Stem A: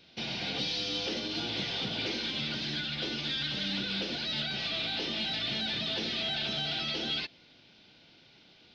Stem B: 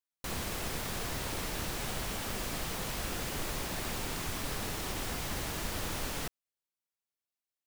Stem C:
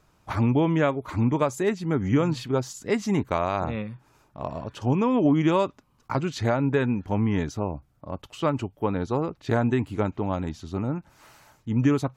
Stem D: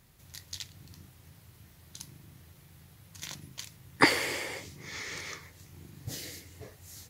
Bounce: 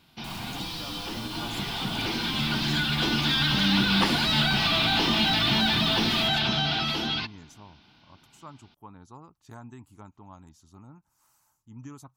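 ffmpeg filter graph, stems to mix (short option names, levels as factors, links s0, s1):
-filter_complex "[0:a]lowpass=6100,bandreject=f=570:w=12,dynaudnorm=f=370:g=13:m=4.47,volume=1.33[s0];[1:a]volume=0.501[s1];[2:a]bass=f=250:g=-1,treble=f=4000:g=14,volume=0.112[s2];[3:a]volume=0.562[s3];[s0][s1][s2][s3]amix=inputs=4:normalize=0,equalizer=f=500:t=o:w=1:g=-12,equalizer=f=1000:t=o:w=1:g=8,equalizer=f=2000:t=o:w=1:g=-6,equalizer=f=4000:t=o:w=1:g=-6"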